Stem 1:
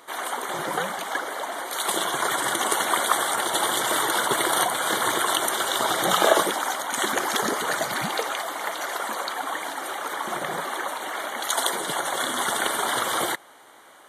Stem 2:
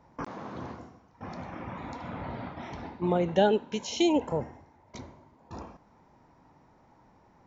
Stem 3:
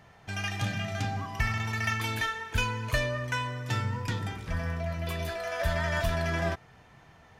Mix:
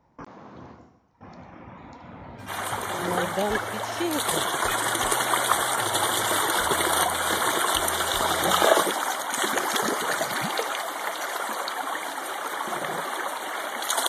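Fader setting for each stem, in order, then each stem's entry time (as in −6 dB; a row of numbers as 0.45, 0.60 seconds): −0.5, −4.5, −12.0 decibels; 2.40, 0.00, 2.10 seconds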